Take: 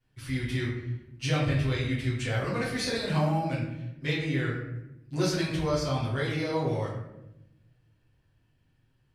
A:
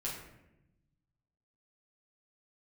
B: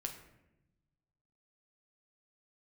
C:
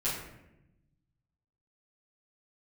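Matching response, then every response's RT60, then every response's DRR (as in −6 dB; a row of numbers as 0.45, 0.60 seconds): C; 0.90, 0.90, 0.90 seconds; −6.0, 3.0, −10.5 decibels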